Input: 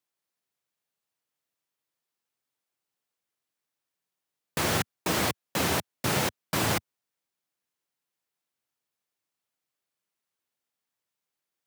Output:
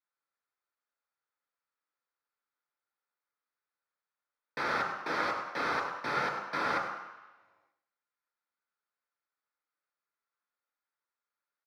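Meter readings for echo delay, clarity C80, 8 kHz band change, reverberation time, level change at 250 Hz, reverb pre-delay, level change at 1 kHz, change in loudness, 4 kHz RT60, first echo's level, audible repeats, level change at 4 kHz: 101 ms, 5.5 dB, −22.0 dB, 1.1 s, −11.0 dB, 3 ms, +0.5 dB, −4.5 dB, 1.2 s, −10.0 dB, 1, −11.5 dB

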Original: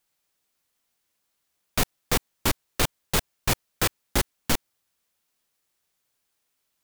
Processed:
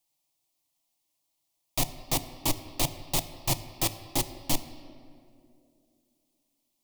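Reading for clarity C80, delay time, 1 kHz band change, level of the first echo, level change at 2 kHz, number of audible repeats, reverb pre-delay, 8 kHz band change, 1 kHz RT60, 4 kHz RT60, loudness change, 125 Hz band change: 13.0 dB, no echo audible, −4.0 dB, no echo audible, −9.5 dB, no echo audible, 6 ms, −1.5 dB, 2.0 s, 1.4 s, −3.0 dB, −3.0 dB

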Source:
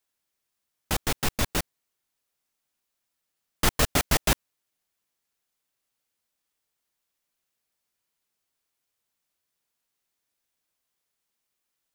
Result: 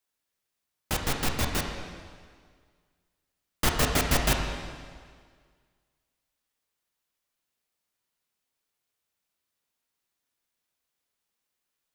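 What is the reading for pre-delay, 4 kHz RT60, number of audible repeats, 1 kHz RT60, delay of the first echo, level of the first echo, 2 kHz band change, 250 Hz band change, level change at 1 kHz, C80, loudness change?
6 ms, 1.7 s, no echo audible, 1.8 s, no echo audible, no echo audible, −0.5 dB, 0.0 dB, 0.0 dB, 5.5 dB, −1.5 dB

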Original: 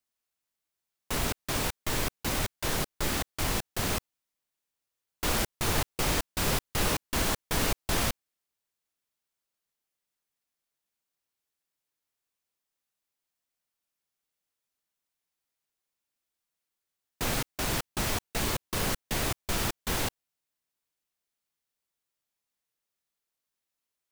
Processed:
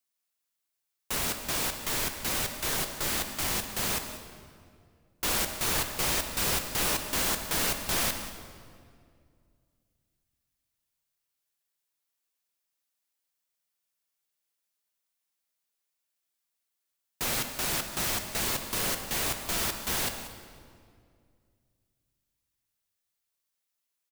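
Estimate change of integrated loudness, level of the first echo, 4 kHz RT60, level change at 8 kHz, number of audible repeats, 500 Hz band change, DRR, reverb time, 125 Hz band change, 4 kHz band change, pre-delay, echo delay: +1.5 dB, −14.0 dB, 1.6 s, +3.0 dB, 1, −2.5 dB, 6.0 dB, 2.2 s, −6.0 dB, +1.5 dB, 5 ms, 187 ms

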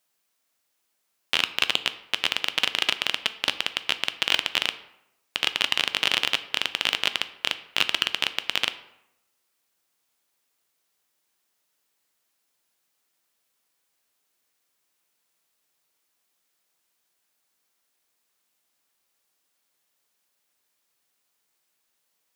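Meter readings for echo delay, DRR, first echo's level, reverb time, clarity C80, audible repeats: no echo audible, 11.0 dB, no echo audible, 0.90 s, 16.5 dB, no echo audible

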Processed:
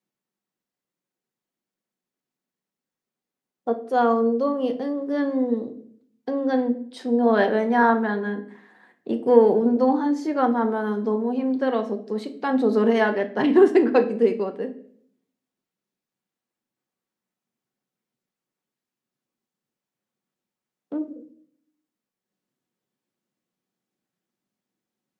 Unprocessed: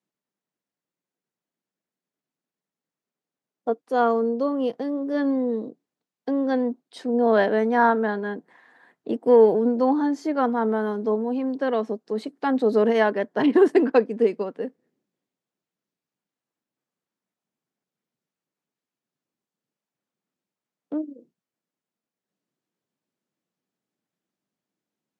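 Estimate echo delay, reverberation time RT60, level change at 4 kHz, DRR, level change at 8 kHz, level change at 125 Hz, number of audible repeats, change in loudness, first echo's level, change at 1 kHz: no echo audible, 0.55 s, +1.0 dB, 6.0 dB, can't be measured, can't be measured, no echo audible, +0.5 dB, no echo audible, +1.0 dB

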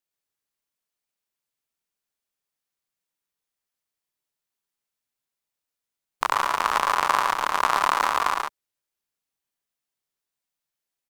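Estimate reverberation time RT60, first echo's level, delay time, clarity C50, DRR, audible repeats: no reverb audible, −5.0 dB, 110 ms, no reverb audible, no reverb audible, 1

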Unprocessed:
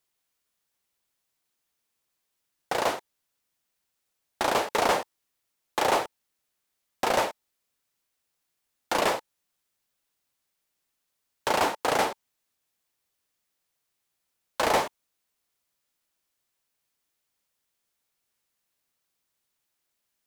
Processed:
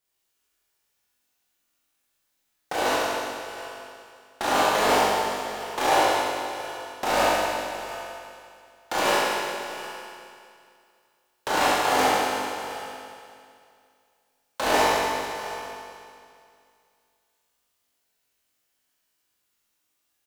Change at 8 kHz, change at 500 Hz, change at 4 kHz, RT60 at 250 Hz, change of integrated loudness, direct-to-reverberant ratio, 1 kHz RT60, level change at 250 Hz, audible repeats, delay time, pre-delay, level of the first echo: +5.5 dB, +4.0 dB, +6.0 dB, 2.5 s, +2.5 dB, −8.5 dB, 2.6 s, +5.5 dB, 1, 718 ms, 19 ms, −15.5 dB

